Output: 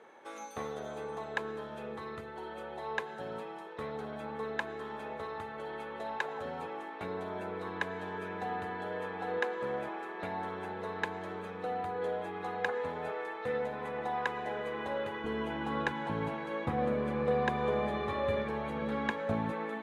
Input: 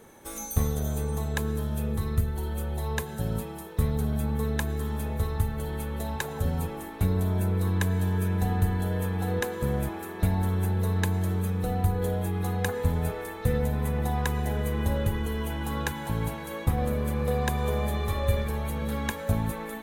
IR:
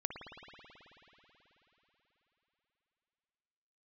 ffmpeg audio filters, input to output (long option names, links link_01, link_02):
-af "asetnsamples=nb_out_samples=441:pad=0,asendcmd='15.24 highpass f 220',highpass=480,lowpass=2600"